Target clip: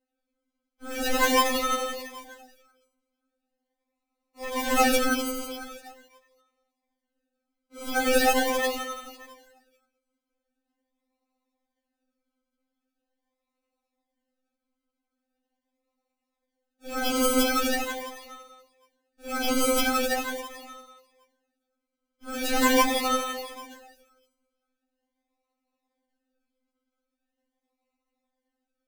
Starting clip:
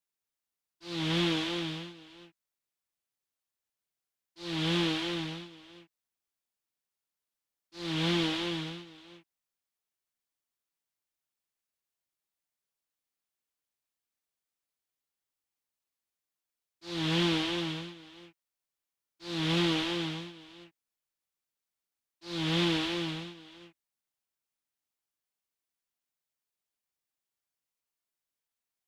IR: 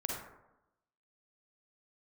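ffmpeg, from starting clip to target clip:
-filter_complex "[1:a]atrim=start_sample=2205,asetrate=30870,aresample=44100[a];[0:a][a]afir=irnorm=-1:irlink=0,acrusher=samples=38:mix=1:aa=0.000001:lfo=1:lforange=22.8:lforate=0.42,afftfilt=real='re*3.46*eq(mod(b,12),0)':imag='im*3.46*eq(mod(b,12),0)':win_size=2048:overlap=0.75,volume=7.5dB"

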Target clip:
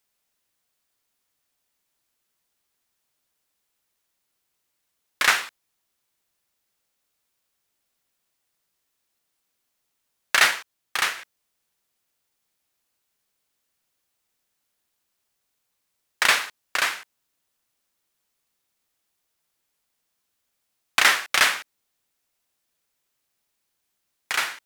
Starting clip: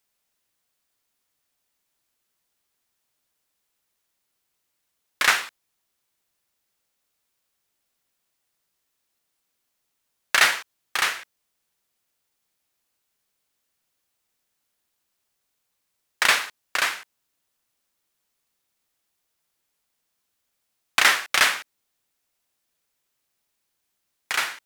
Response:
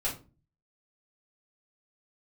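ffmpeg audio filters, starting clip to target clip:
-filter_complex "[0:a]asettb=1/sr,asplit=3[a][b][c];[a]atrim=end=10.474[d];[b]atrim=start=10.47:end=11.18,asetpts=PTS-STARTPTS,afade=t=in:d=0.004:c=qsin,afade=t=out:st=0.706:d=0.004:c=qsin,aeval=exprs='0.473*(cos(1*acos(clip(val(0)/0.473,-1,1)))-cos(1*PI/2))+0.015*(cos(7*acos(clip(val(0)/0.473,-1,1)))-cos(7*PI/2))':c=same[e];[c]atrim=start=11.176[f];[d][e]acrossfade=d=0.004:c1=hsin:c2=qsin[g];[g][f]acrossfade=d=0.004:c1=qsin:c2=hsin"

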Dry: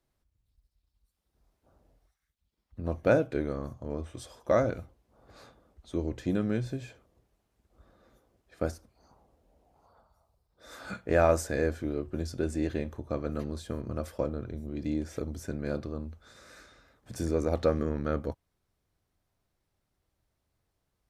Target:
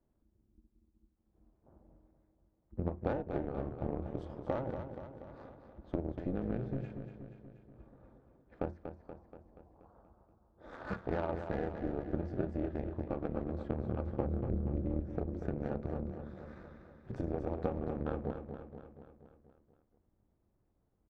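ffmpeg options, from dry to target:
-filter_complex "[0:a]asettb=1/sr,asplit=3[a][b][c];[a]atrim=end=14.064[d];[b]atrim=start=14.06:end=15,asetpts=PTS-STARTPTS,afade=t=in:d=0.004:c=qsin,afade=t=out:st=0.936:d=0.004:c=qsin,aemphasis=mode=reproduction:type=bsi[e];[c]atrim=start=14.996[f];[d][e]acrossfade=d=0.004:c1=hsin:c2=qsin[g];[g][f]acrossfade=d=0.004:c1=qsin:c2=hsin,acompressor=threshold=-35dB:ratio=8,tremolo=f=270:d=0.889,adynamicsmooth=sensitivity=4.5:basefreq=990,aecho=1:1:239|478|717|956|1195|1434|1673:0.398|0.231|0.134|0.0777|0.0451|0.0261|0.0152,volume=7dB"

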